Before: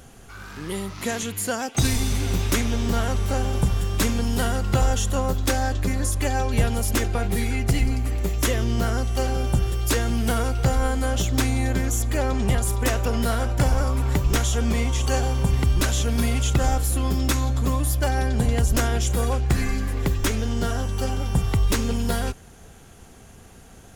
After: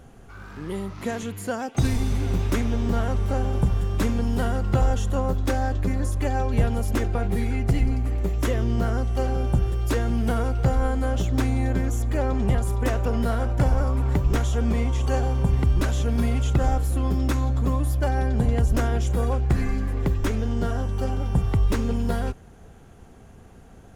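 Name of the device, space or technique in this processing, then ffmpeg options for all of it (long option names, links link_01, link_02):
through cloth: -af "highshelf=frequency=2200:gain=-12.5"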